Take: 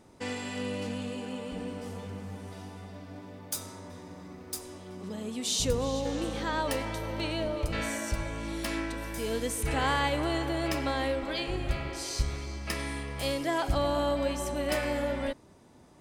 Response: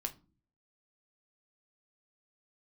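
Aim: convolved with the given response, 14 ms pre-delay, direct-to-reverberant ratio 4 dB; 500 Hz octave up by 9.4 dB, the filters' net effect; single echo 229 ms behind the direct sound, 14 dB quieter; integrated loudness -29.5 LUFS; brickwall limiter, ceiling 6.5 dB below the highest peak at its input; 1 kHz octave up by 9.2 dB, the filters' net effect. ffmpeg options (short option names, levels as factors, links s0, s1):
-filter_complex "[0:a]equalizer=f=500:t=o:g=8.5,equalizer=f=1000:t=o:g=8.5,alimiter=limit=0.168:level=0:latency=1,aecho=1:1:229:0.2,asplit=2[s0][s1];[1:a]atrim=start_sample=2205,adelay=14[s2];[s1][s2]afir=irnorm=-1:irlink=0,volume=0.668[s3];[s0][s3]amix=inputs=2:normalize=0,volume=0.596"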